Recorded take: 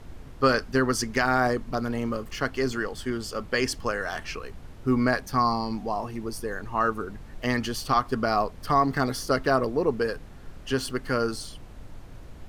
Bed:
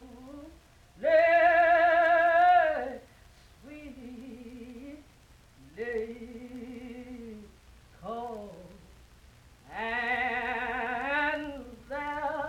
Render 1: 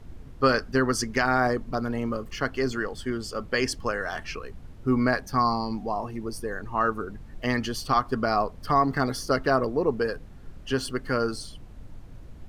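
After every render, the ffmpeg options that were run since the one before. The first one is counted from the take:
-af "afftdn=nr=6:nf=-44"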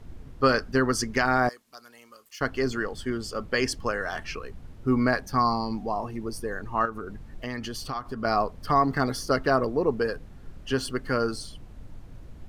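-filter_complex "[0:a]asettb=1/sr,asplit=3[a][b][c];[a]atrim=end=1.494[d];[b]atrim=start=1.49:end=2.41,asetpts=PTS-STARTPTS,afade=t=in:d=0.004:c=qsin,afade=t=out:st=0.916:d=0.004:c=qsin,aderivative[e];[c]atrim=start=2.406[f];[d][e]acrossfade=d=0.004:c1=hsin:c2=qsin[g];[g][f]acrossfade=d=0.004:c1=qsin:c2=hsin,asettb=1/sr,asplit=3[h][i][j];[h]atrim=end=6.854[k];[i]atrim=start=6.85:end=8.25,asetpts=PTS-STARTPTS,afade=t=in:d=0.004:c=qsin,afade=t=out:st=1.396:d=0.004:c=qsin,acompressor=threshold=-31dB:ratio=3:attack=3.2:release=140:knee=1:detection=peak[l];[j]atrim=start=8.246[m];[k][l]acrossfade=d=0.004:c1=hsin:c2=qsin[n];[n][m]acrossfade=d=0.004:c1=qsin:c2=hsin"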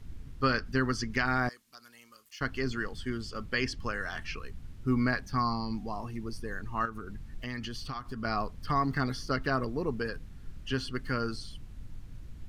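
-filter_complex "[0:a]equalizer=f=600:w=0.63:g=-11,acrossover=split=4800[a][b];[b]acompressor=threshold=-55dB:ratio=4:attack=1:release=60[c];[a][c]amix=inputs=2:normalize=0"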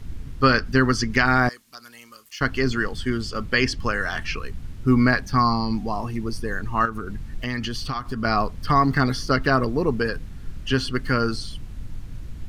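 -af "volume=10dB"

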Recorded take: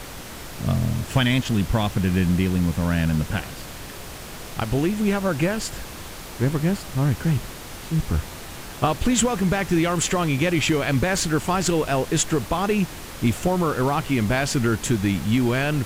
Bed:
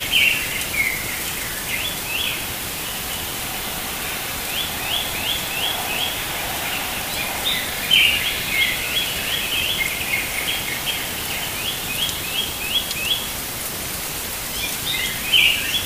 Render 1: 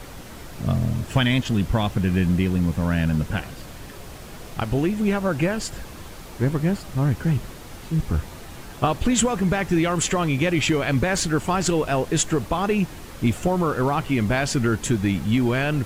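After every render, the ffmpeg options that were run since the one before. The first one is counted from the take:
-af "afftdn=nr=6:nf=-37"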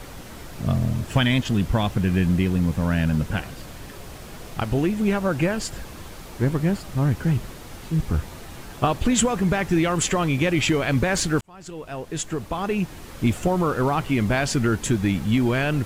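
-filter_complex "[0:a]asplit=2[a][b];[a]atrim=end=11.41,asetpts=PTS-STARTPTS,afade=t=out:st=11.406:d=0.004:c=hsin[c];[b]atrim=start=11.41,asetpts=PTS-STARTPTS,afade=t=in:d=1.83[d];[c][d]concat=n=2:v=0:a=1"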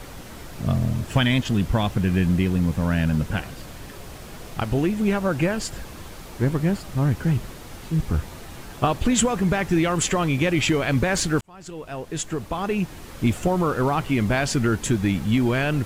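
-af anull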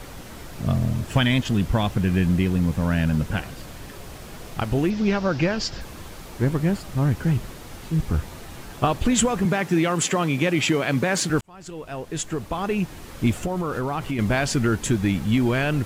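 -filter_complex "[0:a]asettb=1/sr,asplit=3[a][b][c];[a]atrim=end=4.904[d];[b]atrim=start=4.9:end=5.81,asetpts=PTS-STARTPTS,afade=t=in:d=0.004:c=qsin,afade=t=out:st=0.906:d=0.004:c=qsin,highshelf=f=7.1k:t=q:w=3:g=-11.5[e];[c]atrim=start=5.806[f];[d][e]acrossfade=d=0.004:c1=hsin:c2=qsin[g];[g][f]acrossfade=d=0.004:c1=qsin:c2=hsin,asettb=1/sr,asplit=3[h][i][j];[h]atrim=end=9.454[k];[i]atrim=start=9.45:end=11.3,asetpts=PTS-STARTPTS,afade=t=in:d=0.004:c=qsin,afade=t=out:st=1.846:d=0.004:c=qsin,highpass=f=130:w=0.5412,highpass=f=130:w=1.3066[l];[j]atrim=start=11.296[m];[k][l]acrossfade=d=0.004:c1=hsin:c2=qsin[n];[n][m]acrossfade=d=0.004:c1=qsin:c2=hsin,asettb=1/sr,asplit=3[o][p][q];[o]atrim=end=13.314[r];[p]atrim=start=13.31:end=14.19,asetpts=PTS-STARTPTS,afade=t=in:d=0.004:c=qsin,afade=t=out:st=0.876:d=0.004:c=qsin,acompressor=threshold=-22dB:ratio=5:attack=3.2:release=140:knee=1:detection=peak[s];[q]atrim=start=14.186[t];[r][s]acrossfade=d=0.004:c1=hsin:c2=qsin[u];[u][t]acrossfade=d=0.004:c1=qsin:c2=hsin"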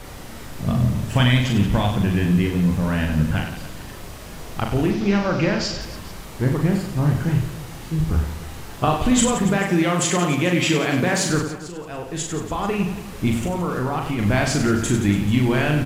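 -filter_complex "[0:a]asplit=2[a][b];[b]adelay=39,volume=-12dB[c];[a][c]amix=inputs=2:normalize=0,aecho=1:1:40|96|174.4|284.2|437.8:0.631|0.398|0.251|0.158|0.1"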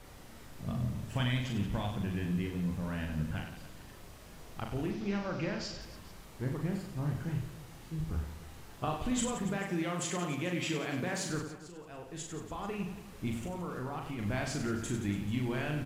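-af "volume=-15dB"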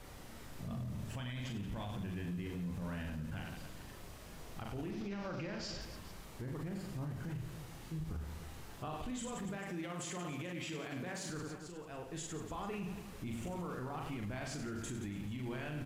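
-af "acompressor=threshold=-35dB:ratio=6,alimiter=level_in=10dB:limit=-24dB:level=0:latency=1:release=17,volume=-10dB"

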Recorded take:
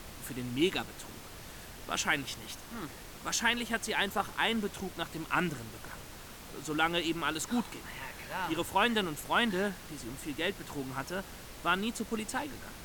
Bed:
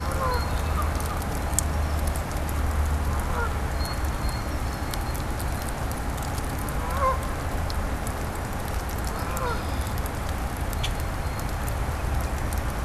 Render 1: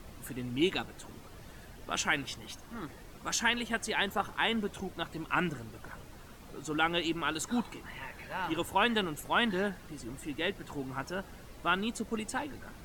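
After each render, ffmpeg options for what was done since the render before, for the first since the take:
-af "afftdn=nr=9:nf=-48"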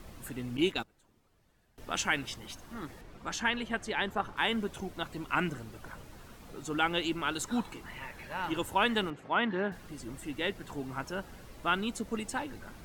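-filter_complex "[0:a]asettb=1/sr,asplit=3[a][b][c];[a]atrim=end=0.574[d];[b]atrim=start=0.57:end=1.78,asetpts=PTS-STARTPTS,afade=t=in:d=0.004:c=qsin,afade=t=out:st=1.206:d=0.004:c=qsin,agate=range=-20dB:threshold=-37dB:ratio=16:release=100:detection=peak[e];[c]atrim=start=1.776[f];[d][e]acrossfade=d=0.004:c1=hsin:c2=qsin[g];[g][f]acrossfade=d=0.004:c1=qsin:c2=hsin,asettb=1/sr,asplit=3[h][i][j];[h]atrim=end=3.014[k];[i]atrim=start=3.01:end=4.37,asetpts=PTS-STARTPTS,afade=t=in:d=0.004:c=qsin,afade=t=out:st=1.356:d=0.004:c=qsin,lowpass=f=2.9k:p=1[l];[j]atrim=start=4.366[m];[k][l]acrossfade=d=0.004:c1=hsin:c2=qsin[n];[n][m]acrossfade=d=0.004:c1=qsin:c2=hsin,asettb=1/sr,asplit=3[o][p][q];[o]atrim=end=9.104[r];[p]atrim=start=9.1:end=9.72,asetpts=PTS-STARTPTS,afade=t=in:d=0.004:c=qsin,afade=t=out:st=0.616:d=0.004:c=qsin,highpass=140,lowpass=2.5k[s];[q]atrim=start=9.716[t];[r][s]acrossfade=d=0.004:c1=hsin:c2=qsin[u];[u][t]acrossfade=d=0.004:c1=qsin:c2=hsin"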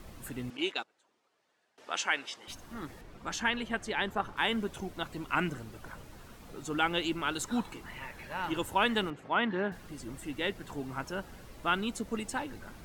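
-filter_complex "[0:a]asettb=1/sr,asplit=3[a][b][c];[a]atrim=end=0.504[d];[b]atrim=start=0.5:end=2.48,asetpts=PTS-STARTPTS,afade=t=in:d=0.004:c=qsin,afade=t=out:st=1.976:d=0.004:c=qsin,highpass=460,lowpass=7.1k[e];[c]atrim=start=2.476[f];[d][e]acrossfade=d=0.004:c1=hsin:c2=qsin[g];[g][f]acrossfade=d=0.004:c1=qsin:c2=hsin"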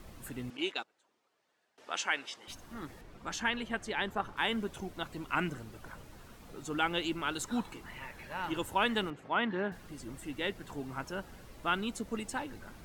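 -af "volume=-2dB"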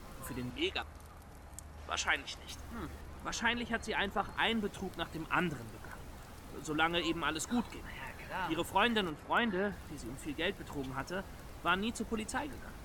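-filter_complex "[1:a]volume=-24.5dB[a];[0:a][a]amix=inputs=2:normalize=0"

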